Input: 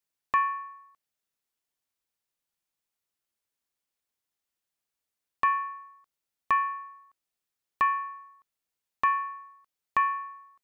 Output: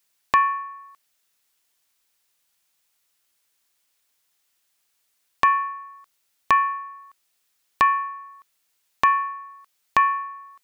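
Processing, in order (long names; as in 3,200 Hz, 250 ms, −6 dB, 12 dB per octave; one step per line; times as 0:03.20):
one half of a high-frequency compander encoder only
level +6.5 dB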